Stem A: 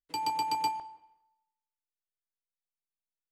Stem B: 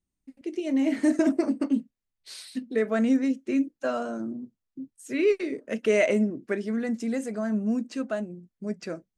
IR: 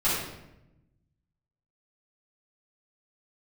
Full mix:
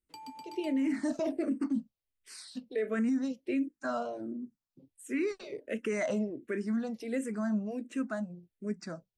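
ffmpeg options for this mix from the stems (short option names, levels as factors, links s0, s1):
-filter_complex "[0:a]acompressor=threshold=0.0158:ratio=4,volume=0.316[s0];[1:a]bandreject=f=6500:w=17,asplit=2[s1][s2];[s2]afreqshift=-1.4[s3];[s1][s3]amix=inputs=2:normalize=1,volume=0.841[s4];[s0][s4]amix=inputs=2:normalize=0,alimiter=limit=0.0631:level=0:latency=1:release=11"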